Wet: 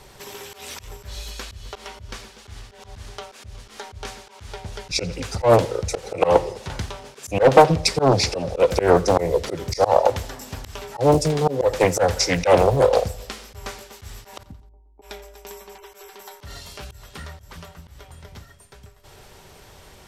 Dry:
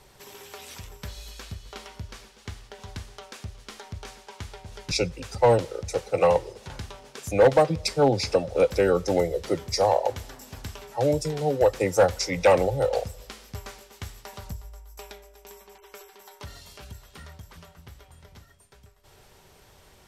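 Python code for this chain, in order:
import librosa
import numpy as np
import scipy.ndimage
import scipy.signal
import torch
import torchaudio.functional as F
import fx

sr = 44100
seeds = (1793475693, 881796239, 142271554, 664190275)

y = fx.formant_cascade(x, sr, vowel='u', at=(14.43, 15.02))
y = fx.echo_feedback(y, sr, ms=86, feedback_pct=47, wet_db=-21.5)
y = fx.auto_swell(y, sr, attack_ms=119.0)
y = fx.doppler_dist(y, sr, depth_ms=0.74)
y = y * 10.0 ** (8.0 / 20.0)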